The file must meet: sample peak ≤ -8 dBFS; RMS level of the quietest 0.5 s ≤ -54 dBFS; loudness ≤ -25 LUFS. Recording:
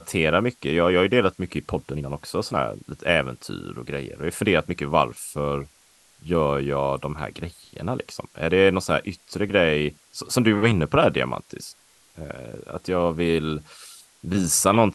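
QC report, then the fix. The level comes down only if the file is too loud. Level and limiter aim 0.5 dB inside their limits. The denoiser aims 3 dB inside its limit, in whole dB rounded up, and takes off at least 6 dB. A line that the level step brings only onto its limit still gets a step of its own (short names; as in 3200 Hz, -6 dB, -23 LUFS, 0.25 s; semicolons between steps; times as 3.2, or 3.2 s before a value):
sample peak -4.0 dBFS: fail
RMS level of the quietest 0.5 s -57 dBFS: OK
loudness -23.0 LUFS: fail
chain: gain -2.5 dB; limiter -8.5 dBFS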